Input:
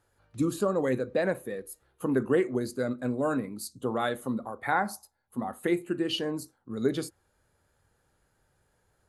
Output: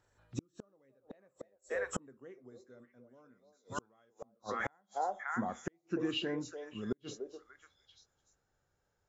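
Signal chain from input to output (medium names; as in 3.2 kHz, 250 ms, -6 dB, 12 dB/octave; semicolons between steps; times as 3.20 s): knee-point frequency compression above 3.2 kHz 1.5:1; Doppler pass-by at 2.52 s, 13 m/s, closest 3.7 m; on a send: repeats whose band climbs or falls 294 ms, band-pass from 590 Hz, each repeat 1.4 oct, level -4 dB; on the sum: inverted gate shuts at -39 dBFS, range -42 dB; trim +16.5 dB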